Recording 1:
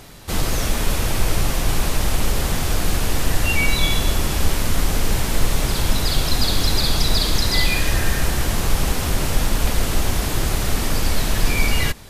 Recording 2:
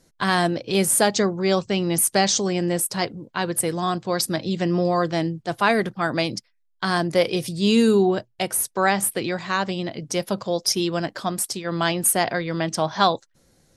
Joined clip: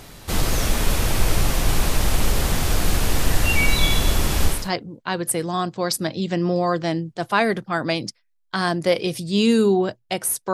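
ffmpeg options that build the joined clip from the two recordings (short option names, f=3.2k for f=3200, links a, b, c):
-filter_complex "[0:a]apad=whole_dur=10.53,atrim=end=10.53,atrim=end=4.7,asetpts=PTS-STARTPTS[a];[1:a]atrim=start=2.73:end=8.82,asetpts=PTS-STARTPTS[b];[a][b]acrossfade=d=0.26:c1=tri:c2=tri"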